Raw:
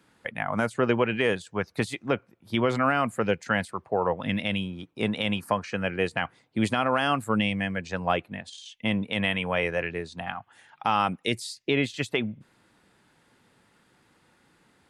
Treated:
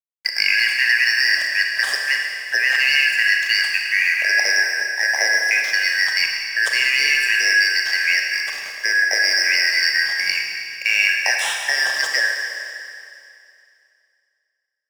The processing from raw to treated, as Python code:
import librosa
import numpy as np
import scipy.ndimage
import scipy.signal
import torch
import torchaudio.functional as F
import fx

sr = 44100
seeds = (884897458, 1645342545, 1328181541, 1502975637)

p1 = fx.band_shuffle(x, sr, order='3142')
p2 = scipy.signal.sosfilt(scipy.signal.butter(4, 520.0, 'highpass', fs=sr, output='sos'), p1)
p3 = fx.over_compress(p2, sr, threshold_db=-30.0, ratio=-1.0)
p4 = p2 + (p3 * librosa.db_to_amplitude(2.5))
p5 = np.sign(p4) * np.maximum(np.abs(p4) - 10.0 ** (-37.5 / 20.0), 0.0)
p6 = fx.rev_schroeder(p5, sr, rt60_s=2.5, comb_ms=27, drr_db=1.0)
y = p6 * librosa.db_to_amplitude(2.5)